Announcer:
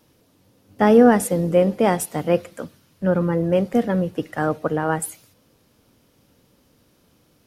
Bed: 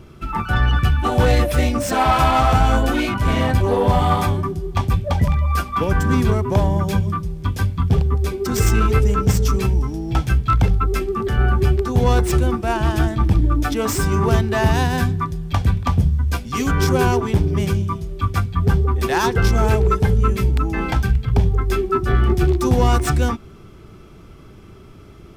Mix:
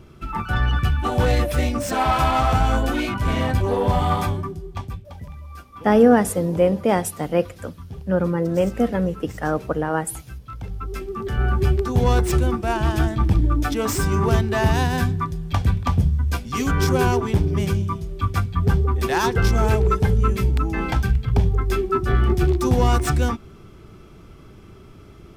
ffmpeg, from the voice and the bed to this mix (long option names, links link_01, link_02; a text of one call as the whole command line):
ffmpeg -i stem1.wav -i stem2.wav -filter_complex "[0:a]adelay=5050,volume=-1dB[link_01];[1:a]volume=14dB,afade=type=out:start_time=4.21:duration=0.87:silence=0.158489,afade=type=in:start_time=10.58:duration=1.14:silence=0.133352[link_02];[link_01][link_02]amix=inputs=2:normalize=0" out.wav